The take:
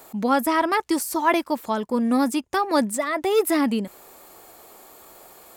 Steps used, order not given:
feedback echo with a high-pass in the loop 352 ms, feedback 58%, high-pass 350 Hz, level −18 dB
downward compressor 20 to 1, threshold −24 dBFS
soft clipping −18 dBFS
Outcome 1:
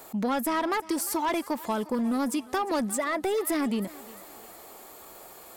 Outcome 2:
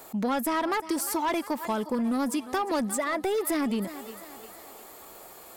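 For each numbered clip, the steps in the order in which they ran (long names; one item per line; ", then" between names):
soft clipping, then downward compressor, then feedback echo with a high-pass in the loop
feedback echo with a high-pass in the loop, then soft clipping, then downward compressor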